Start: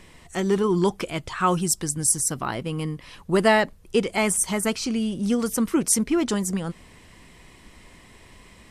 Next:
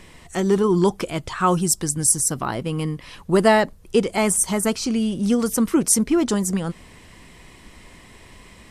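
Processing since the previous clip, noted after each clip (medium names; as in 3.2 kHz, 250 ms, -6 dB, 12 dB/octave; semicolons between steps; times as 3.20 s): dynamic bell 2.4 kHz, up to -5 dB, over -38 dBFS, Q 1; trim +3.5 dB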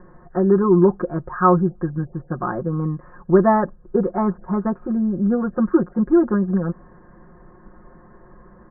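rippled Chebyshev low-pass 1.7 kHz, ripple 3 dB; comb 5.6 ms, depth 93%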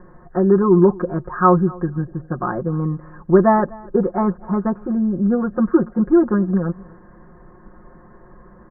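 feedback delay 249 ms, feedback 20%, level -23 dB; trim +1.5 dB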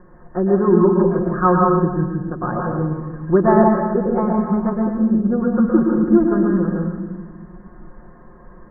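reverberation RT60 1.2 s, pre-delay 111 ms, DRR -1 dB; trim -2.5 dB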